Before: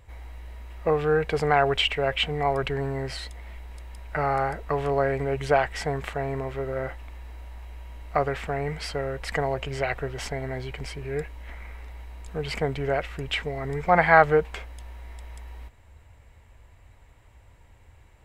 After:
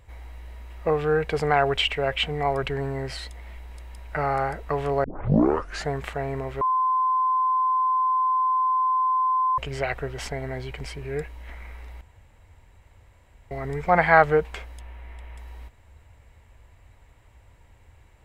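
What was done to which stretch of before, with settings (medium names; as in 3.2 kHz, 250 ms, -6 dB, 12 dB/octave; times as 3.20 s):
5.04 s: tape start 0.86 s
6.61–9.58 s: bleep 1.03 kHz -19 dBFS
12.01–13.51 s: room tone
14.80–15.38 s: resonant high shelf 3.6 kHz -7.5 dB, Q 1.5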